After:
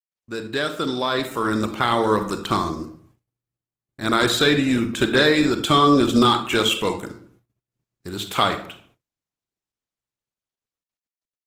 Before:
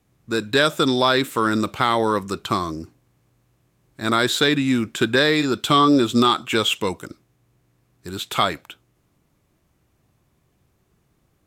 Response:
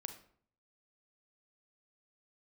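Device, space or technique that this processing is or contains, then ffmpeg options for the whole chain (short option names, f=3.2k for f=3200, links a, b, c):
speakerphone in a meeting room: -filter_complex "[1:a]atrim=start_sample=2205[a];[0:a][a]afir=irnorm=-1:irlink=0,dynaudnorm=f=260:g=13:m=12.5dB,agate=range=-35dB:threshold=-52dB:ratio=16:detection=peak,volume=-3dB" -ar 48000 -c:a libopus -b:a 16k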